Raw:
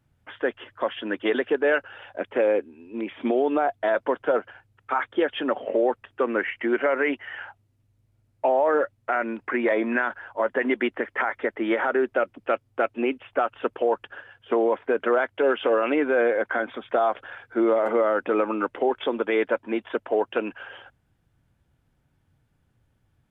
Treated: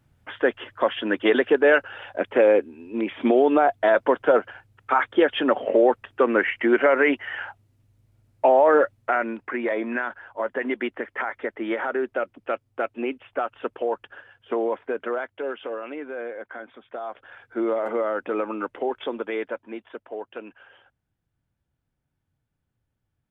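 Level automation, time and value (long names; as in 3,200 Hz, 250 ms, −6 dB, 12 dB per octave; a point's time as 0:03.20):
0:08.96 +4.5 dB
0:09.53 −3 dB
0:14.72 −3 dB
0:15.92 −12 dB
0:17.02 −12 dB
0:17.44 −3.5 dB
0:19.11 −3.5 dB
0:19.99 −11 dB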